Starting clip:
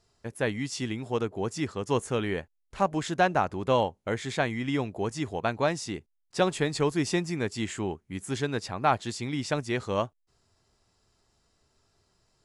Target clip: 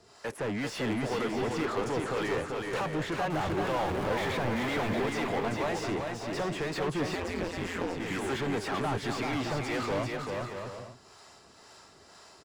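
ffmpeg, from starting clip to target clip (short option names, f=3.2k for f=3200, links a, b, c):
-filter_complex "[0:a]asettb=1/sr,asplit=3[a][b][c];[a]atrim=end=3.304[d];[b]atrim=start=3.3:end=5.02,asetpts=PTS-STARTPTS,afade=t=in:d=0.004:c=qsin,afade=t=out:st=1.716:d=0.004:c=qsin,aeval=exprs='val(0)+0.5*0.0299*sgn(val(0))':c=same[e];[c]atrim=start=5.016[f];[d][e]acrossfade=d=0.004:c1=hsin:c2=qsin[g];[g][f]acrossfade=d=0.004:c1=qsin:c2=hsin,highshelf=f=5.9k:g=9.5,acrossover=split=160|3400[h][i][j];[i]alimiter=limit=-19.5dB:level=0:latency=1:release=419[k];[j]acompressor=threshold=-51dB:ratio=6[l];[h][k][l]amix=inputs=3:normalize=0,acrossover=split=460[m][n];[m]aeval=exprs='val(0)*(1-0.7/2+0.7/2*cos(2*PI*2*n/s))':c=same[o];[n]aeval=exprs='val(0)*(1-0.7/2-0.7/2*cos(2*PI*2*n/s))':c=same[p];[o][p]amix=inputs=2:normalize=0,asplit=2[q][r];[r]highpass=f=720:p=1,volume=34dB,asoftclip=type=tanh:threshold=-20dB[s];[q][s]amix=inputs=2:normalize=0,lowpass=f=1.5k:p=1,volume=-6dB,aecho=1:1:390|624|764.4|848.6|899.2:0.631|0.398|0.251|0.158|0.1,asettb=1/sr,asplit=3[t][u][v];[t]atrim=end=7.154[w];[u]atrim=start=7.15:end=8,asetpts=PTS-STARTPTS,afade=t=in:d=0.004:c=qsin,afade=t=out:st=0.846:d=0.004:c=qsin,aeval=exprs='val(0)*sin(2*PI*87*n/s)':c=same[x];[v]atrim=start=7.996[y];[w][x]acrossfade=d=0.004:c1=hsin:c2=qsin[z];[z][y]acrossfade=d=0.004:c1=qsin:c2=hsin,volume=-4dB"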